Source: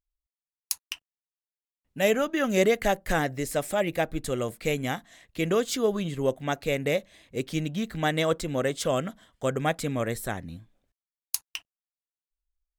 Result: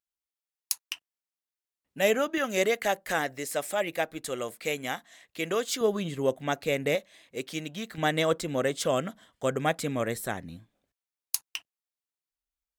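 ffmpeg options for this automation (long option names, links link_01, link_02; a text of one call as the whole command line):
ffmpeg -i in.wav -af "asetnsamples=nb_out_samples=441:pad=0,asendcmd='0.81 highpass f 260;2.38 highpass f 570;5.81 highpass f 160;6.95 highpass f 520;7.98 highpass f 150',highpass=frequency=580:poles=1" out.wav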